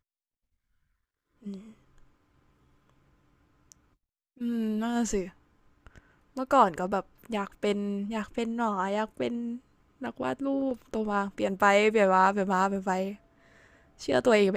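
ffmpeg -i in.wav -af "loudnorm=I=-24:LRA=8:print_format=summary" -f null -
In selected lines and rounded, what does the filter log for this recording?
Input Integrated:    -26.9 LUFS
Input True Peak:      -7.9 dBTP
Input LRA:             9.2 LU
Input Threshold:     -38.8 LUFS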